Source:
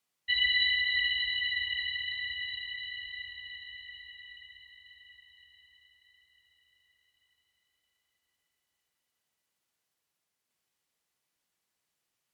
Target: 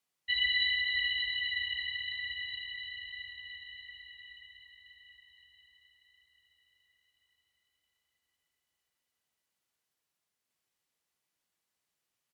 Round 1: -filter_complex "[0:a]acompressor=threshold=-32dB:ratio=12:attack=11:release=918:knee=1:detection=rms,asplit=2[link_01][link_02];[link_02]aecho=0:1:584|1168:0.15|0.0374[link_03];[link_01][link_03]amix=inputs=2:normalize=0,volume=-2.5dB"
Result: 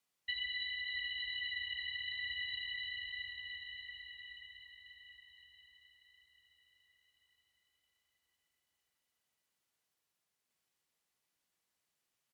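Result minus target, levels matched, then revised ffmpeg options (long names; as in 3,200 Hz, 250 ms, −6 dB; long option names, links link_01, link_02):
downward compressor: peak gain reduction +11.5 dB
-filter_complex "[0:a]asplit=2[link_01][link_02];[link_02]aecho=0:1:584|1168:0.15|0.0374[link_03];[link_01][link_03]amix=inputs=2:normalize=0,volume=-2.5dB"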